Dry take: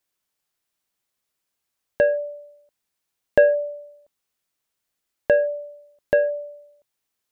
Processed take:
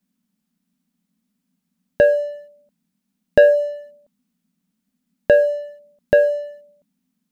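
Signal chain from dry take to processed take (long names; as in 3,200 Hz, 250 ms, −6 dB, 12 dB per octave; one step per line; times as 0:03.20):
low-shelf EQ 330 Hz +6.5 dB
leveller curve on the samples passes 1
noise in a band 170–260 Hz −74 dBFS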